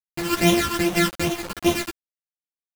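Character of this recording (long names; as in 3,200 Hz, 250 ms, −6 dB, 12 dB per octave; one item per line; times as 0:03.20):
a buzz of ramps at a fixed pitch in blocks of 128 samples
phaser sweep stages 12, 2.5 Hz, lowest notch 640–1,600 Hz
a quantiser's noise floor 6 bits, dither none
a shimmering, thickened sound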